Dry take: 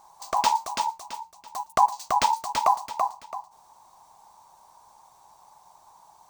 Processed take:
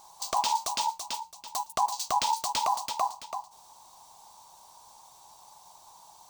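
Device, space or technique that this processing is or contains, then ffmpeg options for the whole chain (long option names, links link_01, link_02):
over-bright horn tweeter: -af "highshelf=frequency=2500:width_type=q:width=1.5:gain=6.5,alimiter=limit=-16.5dB:level=0:latency=1:release=63"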